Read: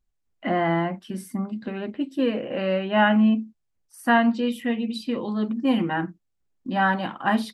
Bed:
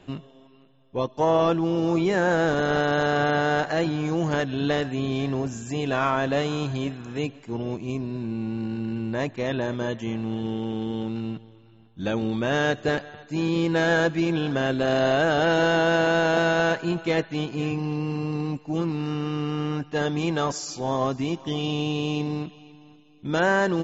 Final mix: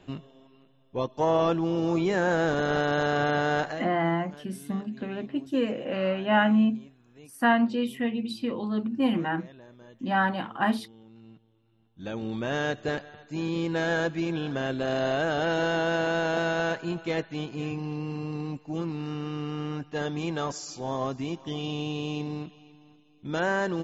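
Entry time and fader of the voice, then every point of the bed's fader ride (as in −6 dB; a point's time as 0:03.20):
3.35 s, −3.0 dB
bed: 0:03.67 −3 dB
0:03.92 −23 dB
0:11.04 −23 dB
0:12.35 −5.5 dB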